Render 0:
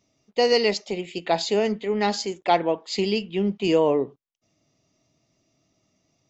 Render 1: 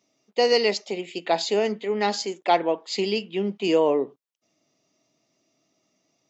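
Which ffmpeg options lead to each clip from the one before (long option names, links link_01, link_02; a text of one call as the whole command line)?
ffmpeg -i in.wav -af "highpass=230" out.wav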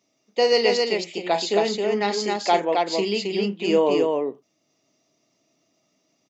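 ffmpeg -i in.wav -af "aecho=1:1:34.99|268.2:0.316|0.708" out.wav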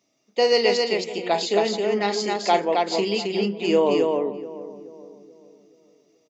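ffmpeg -i in.wav -filter_complex "[0:a]asplit=2[link_01][link_02];[link_02]adelay=429,lowpass=frequency=920:poles=1,volume=-13dB,asplit=2[link_03][link_04];[link_04]adelay=429,lowpass=frequency=920:poles=1,volume=0.48,asplit=2[link_05][link_06];[link_06]adelay=429,lowpass=frequency=920:poles=1,volume=0.48,asplit=2[link_07][link_08];[link_08]adelay=429,lowpass=frequency=920:poles=1,volume=0.48,asplit=2[link_09][link_10];[link_10]adelay=429,lowpass=frequency=920:poles=1,volume=0.48[link_11];[link_01][link_03][link_05][link_07][link_09][link_11]amix=inputs=6:normalize=0" out.wav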